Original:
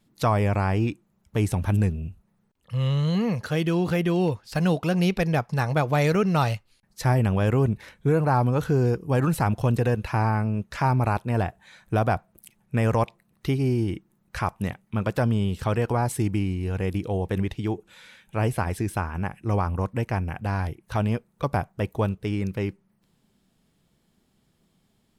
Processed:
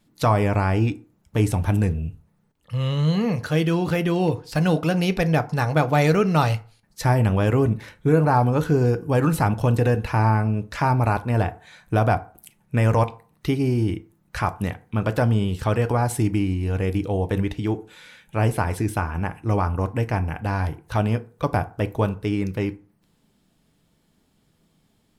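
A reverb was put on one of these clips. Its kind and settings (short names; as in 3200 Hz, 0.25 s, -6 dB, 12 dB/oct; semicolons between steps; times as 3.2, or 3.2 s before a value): FDN reverb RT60 0.41 s, low-frequency decay 0.9×, high-frequency decay 0.55×, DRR 10 dB; gain +2.5 dB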